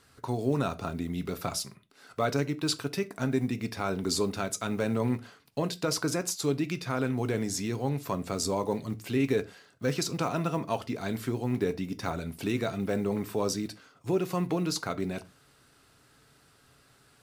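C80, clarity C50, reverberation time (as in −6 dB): 28.0 dB, 21.0 dB, non-exponential decay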